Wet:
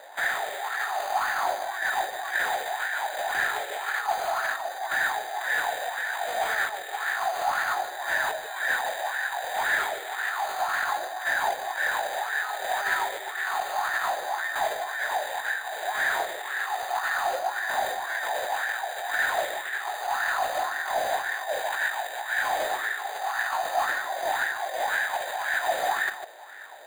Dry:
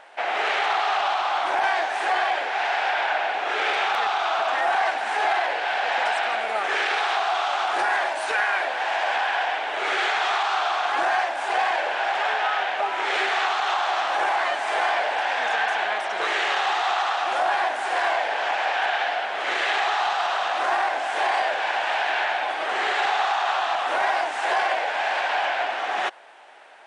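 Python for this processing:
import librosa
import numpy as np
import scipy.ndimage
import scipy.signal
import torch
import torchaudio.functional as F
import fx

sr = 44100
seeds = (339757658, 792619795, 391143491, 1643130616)

p1 = scipy.signal.sosfilt(scipy.signal.butter(4, 120.0, 'highpass', fs=sr, output='sos'), x)
p2 = fx.peak_eq(p1, sr, hz=1800.0, db=11.5, octaves=0.21)
p3 = fx.notch(p2, sr, hz=1200.0, q=11.0)
p4 = fx.over_compress(p3, sr, threshold_db=-25.0, ratio=-0.5)
p5 = np.clip(p4, -10.0 ** (-20.0 / 20.0), 10.0 ** (-20.0 / 20.0))
p6 = p5 + fx.echo_single(p5, sr, ms=149, db=-8.0, dry=0)
p7 = np.repeat(scipy.signal.resample_poly(p6, 1, 8), 8)[:len(p6)]
p8 = fx.bell_lfo(p7, sr, hz=1.9, low_hz=520.0, high_hz=1700.0, db=14)
y = F.gain(torch.from_numpy(p8), -9.0).numpy()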